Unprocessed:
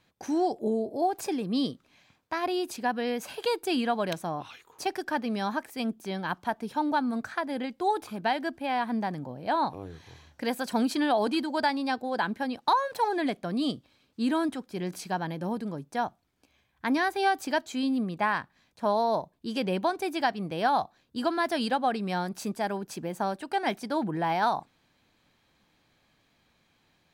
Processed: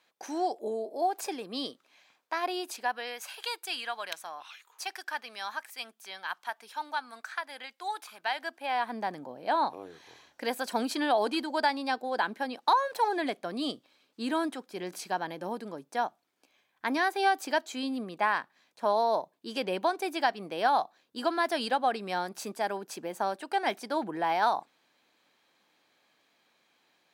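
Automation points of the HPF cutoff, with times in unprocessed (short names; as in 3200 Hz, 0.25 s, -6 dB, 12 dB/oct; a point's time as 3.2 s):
2.58 s 490 Hz
3.33 s 1200 Hz
8.16 s 1200 Hz
9.08 s 350 Hz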